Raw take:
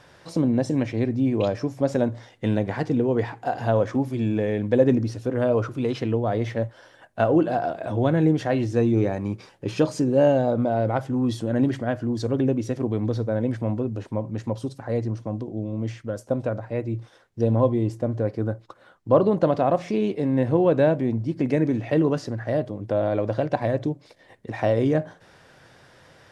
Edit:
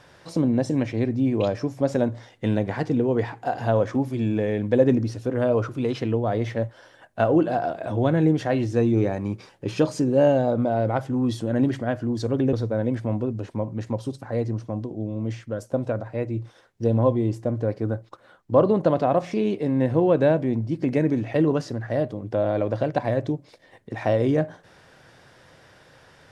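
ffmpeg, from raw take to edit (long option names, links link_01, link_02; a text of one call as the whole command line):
ffmpeg -i in.wav -filter_complex "[0:a]asplit=2[link_01][link_02];[link_01]atrim=end=12.532[link_03];[link_02]atrim=start=13.098[link_04];[link_03][link_04]acrossfade=duration=0.004:curve1=hsin:curve2=hsin" out.wav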